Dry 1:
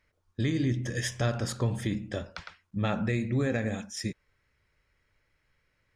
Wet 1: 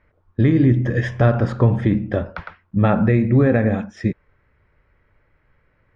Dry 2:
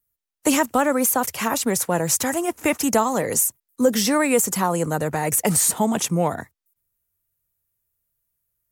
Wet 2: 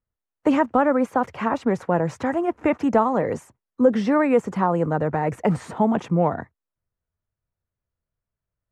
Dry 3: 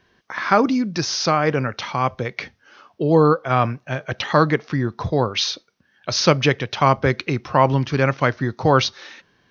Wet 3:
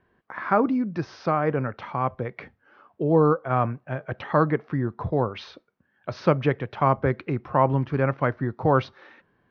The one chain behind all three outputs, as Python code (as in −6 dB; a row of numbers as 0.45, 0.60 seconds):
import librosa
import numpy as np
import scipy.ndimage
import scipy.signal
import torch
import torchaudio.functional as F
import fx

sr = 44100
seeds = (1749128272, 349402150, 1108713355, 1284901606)

y = scipy.signal.sosfilt(scipy.signal.butter(2, 1500.0, 'lowpass', fs=sr, output='sos'), x)
y = y * 10.0 ** (-6 / 20.0) / np.max(np.abs(y))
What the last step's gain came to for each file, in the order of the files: +13.0, +1.5, −4.0 decibels